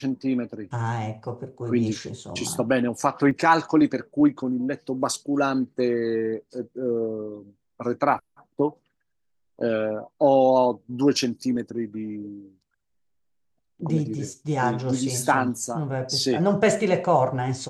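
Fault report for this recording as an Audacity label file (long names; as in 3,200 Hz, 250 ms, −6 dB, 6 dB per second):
3.310000	3.310000	drop-out 2.1 ms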